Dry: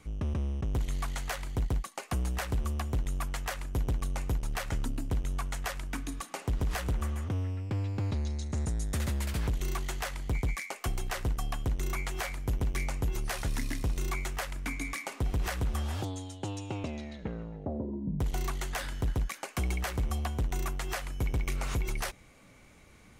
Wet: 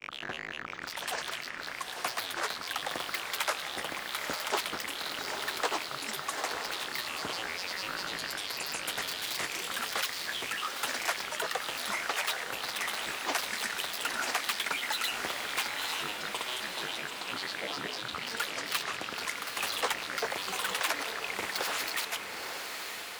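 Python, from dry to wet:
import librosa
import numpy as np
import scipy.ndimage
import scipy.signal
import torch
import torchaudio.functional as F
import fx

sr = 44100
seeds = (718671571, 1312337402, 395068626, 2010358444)

p1 = fx.rattle_buzz(x, sr, strikes_db=-40.0, level_db=-29.0)
p2 = scipy.signal.sosfilt(scipy.signal.butter(2, 690.0, 'highpass', fs=sr, output='sos'), p1)
p3 = fx.granulator(p2, sr, seeds[0], grain_ms=100.0, per_s=20.0, spray_ms=100.0, spread_st=12)
p4 = p3 + fx.echo_diffused(p3, sr, ms=912, feedback_pct=57, wet_db=-5.5, dry=0)
y = F.gain(torch.from_numpy(p4), 6.5).numpy()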